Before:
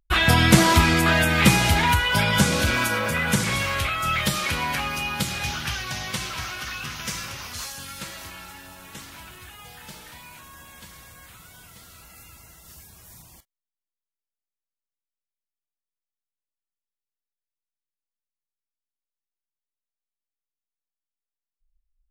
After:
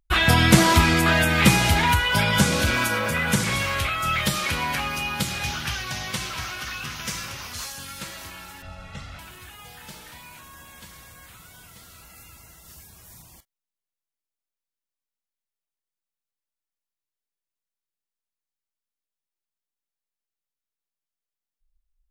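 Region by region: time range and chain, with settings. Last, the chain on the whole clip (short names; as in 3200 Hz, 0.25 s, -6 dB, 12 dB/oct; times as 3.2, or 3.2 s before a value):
8.62–9.19 Bessel low-pass 3600 Hz + low shelf 110 Hz +11.5 dB + comb 1.5 ms, depth 76%
whole clip: dry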